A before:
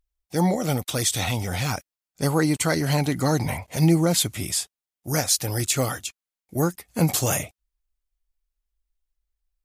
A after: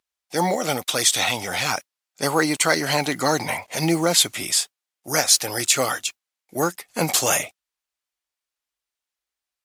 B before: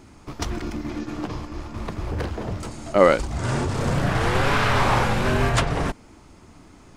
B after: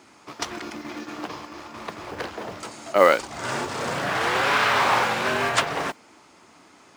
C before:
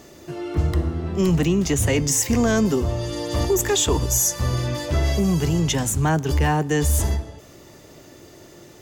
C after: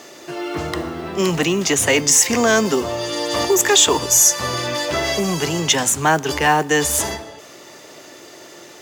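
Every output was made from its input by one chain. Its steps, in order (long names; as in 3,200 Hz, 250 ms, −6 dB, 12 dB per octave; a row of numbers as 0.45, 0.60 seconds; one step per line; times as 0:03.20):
meter weighting curve A
noise that follows the level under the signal 29 dB
normalise the peak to −2 dBFS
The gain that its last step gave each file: +6.0, +1.5, +8.5 decibels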